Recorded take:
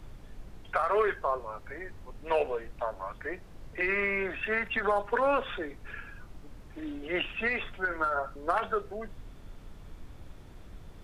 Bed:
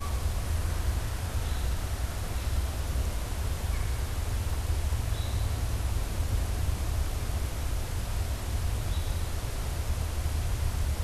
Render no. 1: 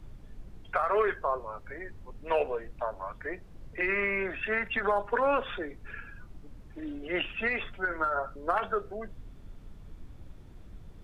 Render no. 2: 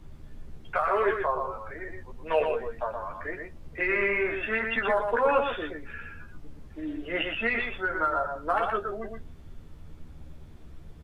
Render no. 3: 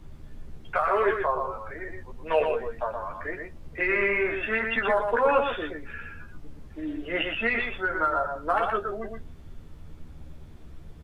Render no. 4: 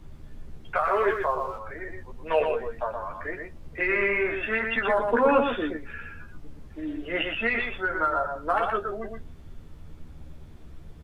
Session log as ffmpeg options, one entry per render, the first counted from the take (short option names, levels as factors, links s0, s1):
-af "afftdn=nr=6:nf=-49"
-filter_complex "[0:a]asplit=2[s0][s1];[s1]adelay=13,volume=0.631[s2];[s0][s2]amix=inputs=2:normalize=0,aecho=1:1:120:0.562"
-af "volume=1.19"
-filter_complex "[0:a]asettb=1/sr,asplit=3[s0][s1][s2];[s0]atrim=end=0.854[s3];[s1]atrim=start=0.85:end=1.59,asetpts=PTS-STARTPTS,afade=t=in:d=0.004:c=qsin,afade=t=out:st=0.736:d=0.004:c=qsin,aeval=exprs='sgn(val(0))*max(abs(val(0))-0.00188,0)':c=same[s4];[s2]atrim=start=1.586[s5];[s3][s4]acrossfade=d=0.004:c1=hsin:c2=qsin[s6];[s6][s5]acrossfade=d=0.004:c1=qsin:c2=hsin,asettb=1/sr,asplit=3[s7][s8][s9];[s7]atrim=end=4.984[s10];[s8]atrim=start=4.98:end=5.77,asetpts=PTS-STARTPTS,afade=t=in:d=0.004:c=qsin,afade=t=out:st=0.786:d=0.004:c=qsin,equalizer=f=250:t=o:w=0.77:g=12[s11];[s9]atrim=start=5.766[s12];[s10][s11]acrossfade=d=0.004:c1=hsin:c2=qsin[s13];[s13][s12]acrossfade=d=0.004:c1=qsin:c2=hsin"